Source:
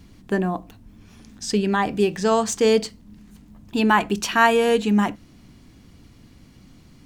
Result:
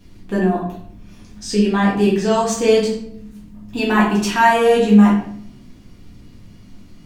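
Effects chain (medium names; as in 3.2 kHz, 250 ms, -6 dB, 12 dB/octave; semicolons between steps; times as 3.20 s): simulated room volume 110 m³, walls mixed, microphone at 1.8 m; trim -4.5 dB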